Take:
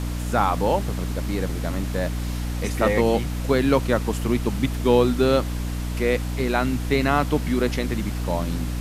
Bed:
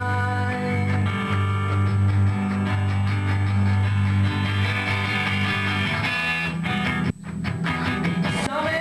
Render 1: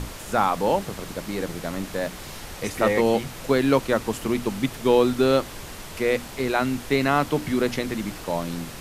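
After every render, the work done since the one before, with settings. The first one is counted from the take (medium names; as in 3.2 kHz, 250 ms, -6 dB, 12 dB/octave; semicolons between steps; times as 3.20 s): hum notches 60/120/180/240/300 Hz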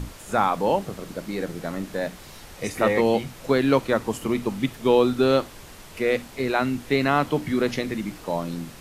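noise print and reduce 6 dB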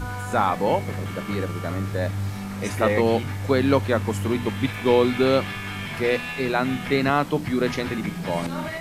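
add bed -8.5 dB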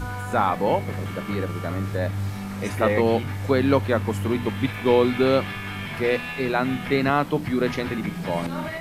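dynamic bell 6.9 kHz, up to -5 dB, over -47 dBFS, Q 0.85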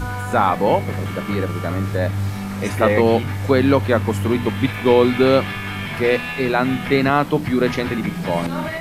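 trim +5 dB; peak limiter -3 dBFS, peak gain reduction 2 dB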